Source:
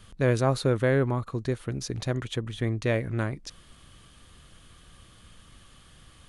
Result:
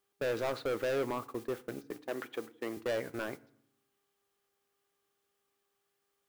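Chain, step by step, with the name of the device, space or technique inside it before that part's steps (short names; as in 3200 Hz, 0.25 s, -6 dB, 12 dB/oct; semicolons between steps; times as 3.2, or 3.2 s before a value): aircraft radio (BPF 360–2400 Hz; hard clip -29 dBFS, distortion -5 dB; buzz 400 Hz, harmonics 30, -58 dBFS -8 dB/oct; white noise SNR 18 dB; gate -40 dBFS, range -27 dB); 1.91–2.77 HPF 210 Hz 12 dB/oct; FDN reverb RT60 0.65 s, low-frequency decay 1.55×, high-frequency decay 0.75×, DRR 16 dB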